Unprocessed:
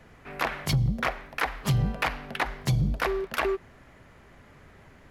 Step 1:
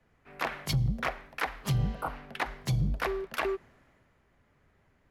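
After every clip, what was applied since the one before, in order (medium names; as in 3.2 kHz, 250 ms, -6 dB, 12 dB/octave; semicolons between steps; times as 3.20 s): spectral replace 1.82–2.13 s, 1.5–7.9 kHz; three bands expanded up and down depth 40%; trim -4.5 dB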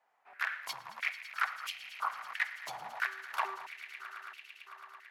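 echo with a slow build-up 111 ms, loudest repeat 5, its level -16 dB; step-sequenced high-pass 3 Hz 810–2600 Hz; trim -7 dB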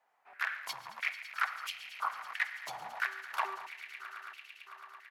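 delay 141 ms -18.5 dB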